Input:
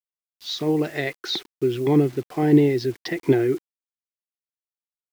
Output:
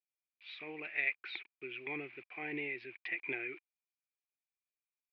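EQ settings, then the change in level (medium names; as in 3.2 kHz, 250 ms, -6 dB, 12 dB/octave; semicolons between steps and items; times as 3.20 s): band-pass filter 2.4 kHz, Q 16; distance through air 440 m; +15.0 dB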